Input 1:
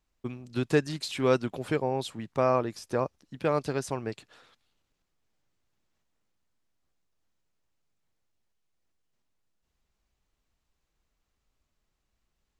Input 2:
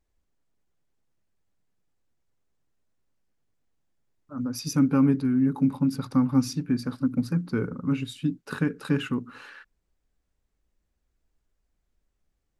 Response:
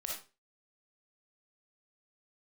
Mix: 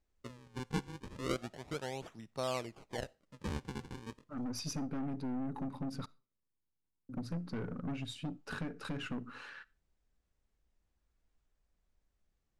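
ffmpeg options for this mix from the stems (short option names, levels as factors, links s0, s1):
-filter_complex "[0:a]acrusher=samples=39:mix=1:aa=0.000001:lfo=1:lforange=62.4:lforate=0.33,volume=0.251,asplit=2[s0][s1];[s1]volume=0.0794[s2];[1:a]acompressor=threshold=0.0501:ratio=6,aeval=exprs='(tanh(35.5*val(0)+0.35)-tanh(0.35))/35.5':c=same,volume=0.708,asplit=3[s3][s4][s5];[s3]atrim=end=6.06,asetpts=PTS-STARTPTS,afade=t=out:st=6.056:d=0.004:c=hsin[s6];[s4]atrim=start=6.06:end=7.09,asetpts=PTS-STARTPTS,volume=0[s7];[s5]atrim=start=7.09,asetpts=PTS-STARTPTS,afade=t=in:d=0.004:c=hsin[s8];[s6][s7][s8]concat=n=3:v=0:a=1,asplit=2[s9][s10];[s10]volume=0.0841[s11];[2:a]atrim=start_sample=2205[s12];[s2][s11]amix=inputs=2:normalize=0[s13];[s13][s12]afir=irnorm=-1:irlink=0[s14];[s0][s9][s14]amix=inputs=3:normalize=0,lowpass=8600,equalizer=f=330:w=1.5:g=-2"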